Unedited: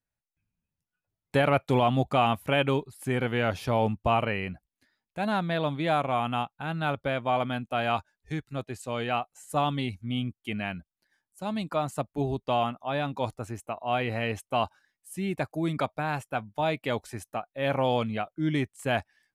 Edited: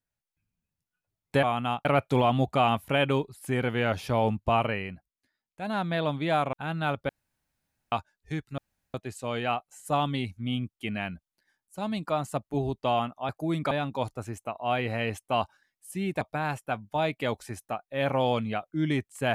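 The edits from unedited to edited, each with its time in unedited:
0:04.24–0:05.49: duck −8 dB, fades 0.39 s
0:06.11–0:06.53: move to 0:01.43
0:07.09–0:07.92: fill with room tone
0:08.58: splice in room tone 0.36 s
0:15.43–0:15.85: move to 0:12.93

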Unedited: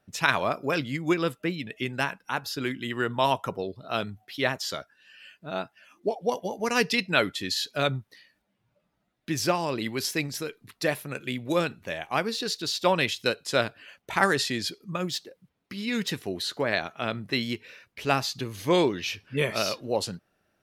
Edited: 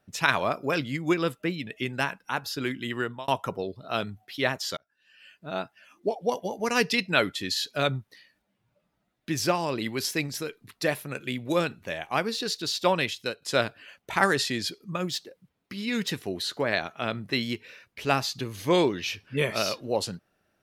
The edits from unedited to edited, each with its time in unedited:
0:02.96–0:03.28: fade out
0:04.77–0:05.48: fade in
0:12.84–0:13.42: fade out, to −8.5 dB

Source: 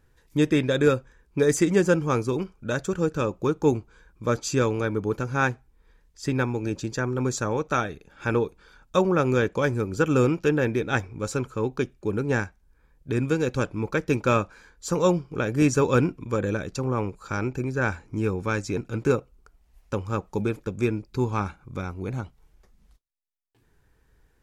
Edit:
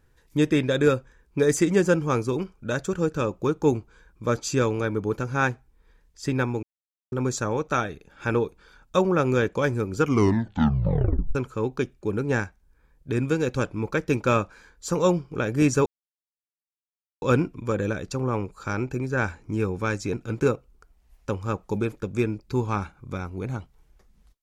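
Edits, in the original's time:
0:06.63–0:07.12: silence
0:09.98: tape stop 1.37 s
0:15.86: splice in silence 1.36 s

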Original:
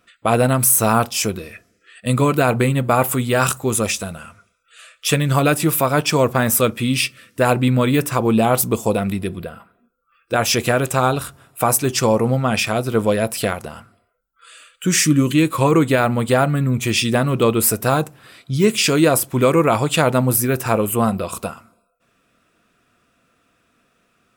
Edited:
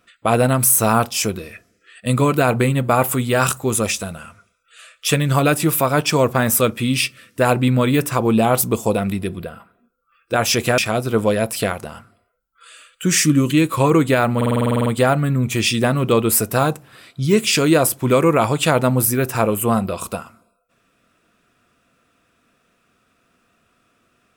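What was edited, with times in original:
0:10.78–0:12.59: remove
0:16.17: stutter 0.05 s, 11 plays

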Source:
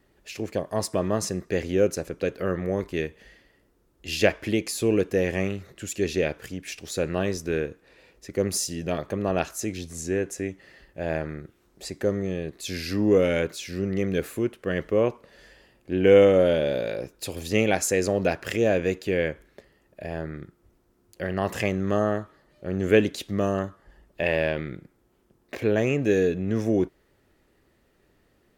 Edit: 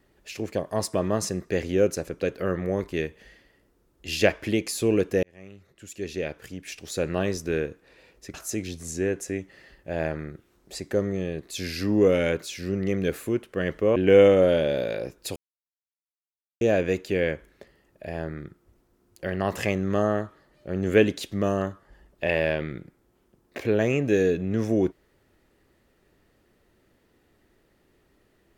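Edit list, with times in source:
0:05.23–0:07.12: fade in
0:08.34–0:09.44: remove
0:15.06–0:15.93: remove
0:17.33–0:18.58: silence

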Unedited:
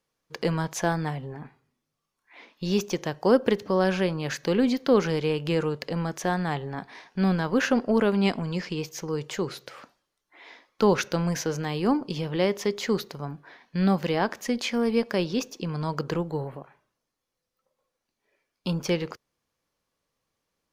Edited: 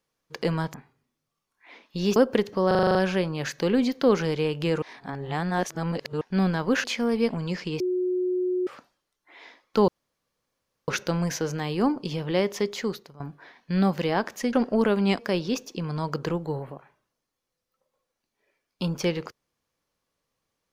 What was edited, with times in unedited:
0:00.74–0:01.41: remove
0:02.83–0:03.29: remove
0:03.80: stutter 0.04 s, 8 plays
0:05.67–0:07.06: reverse
0:07.69–0:08.35: swap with 0:14.58–0:15.04
0:08.85–0:09.72: beep over 364 Hz −22.5 dBFS
0:10.93: splice in room tone 1.00 s
0:12.71–0:13.25: fade out, to −16.5 dB

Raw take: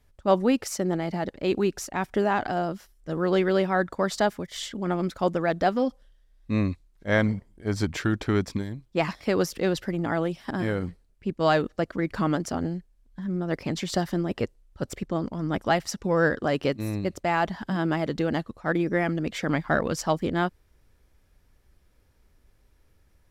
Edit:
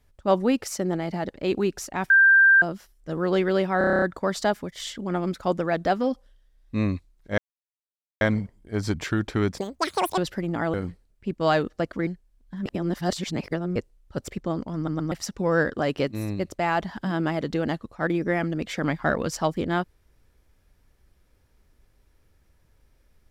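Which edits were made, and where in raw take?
0:02.10–0:02.62: beep over 1,580 Hz −12 dBFS
0:03.78: stutter 0.03 s, 9 plays
0:07.14: splice in silence 0.83 s
0:08.51–0:09.68: play speed 196%
0:10.24–0:10.73: remove
0:12.06–0:12.72: remove
0:13.31–0:14.41: reverse
0:15.41: stutter in place 0.12 s, 3 plays

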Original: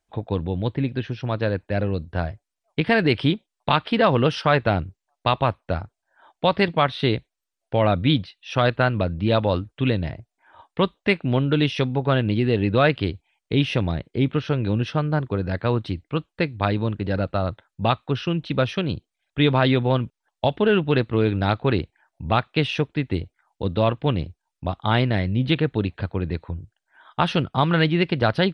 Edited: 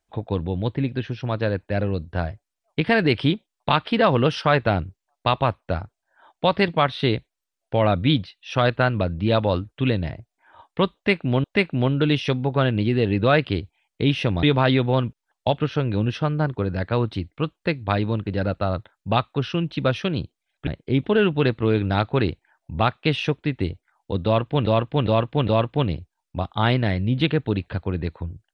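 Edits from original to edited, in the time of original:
0:10.95–0:11.44: repeat, 2 plays
0:13.94–0:14.31: swap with 0:19.40–0:20.55
0:23.76–0:24.17: repeat, 4 plays

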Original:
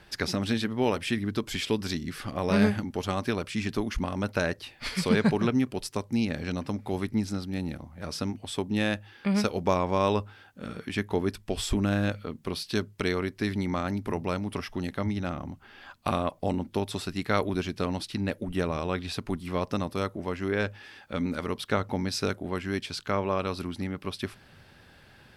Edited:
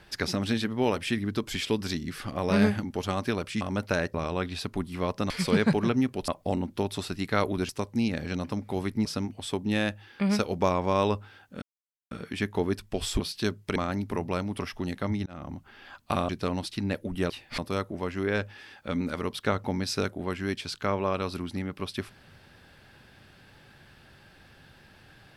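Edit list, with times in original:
0:03.61–0:04.07: remove
0:04.60–0:04.88: swap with 0:18.67–0:19.83
0:07.22–0:08.10: remove
0:10.67: splice in silence 0.49 s
0:11.76–0:12.51: remove
0:13.07–0:13.72: remove
0:15.22–0:15.47: fade in
0:16.25–0:17.66: move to 0:05.86

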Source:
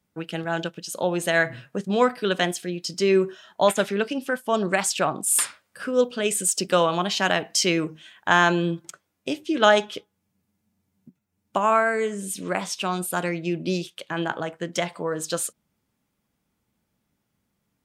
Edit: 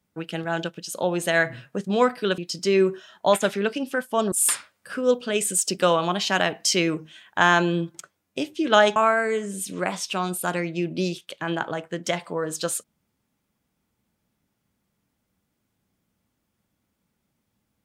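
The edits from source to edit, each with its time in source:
0:02.38–0:02.73: remove
0:04.67–0:05.22: remove
0:09.86–0:11.65: remove

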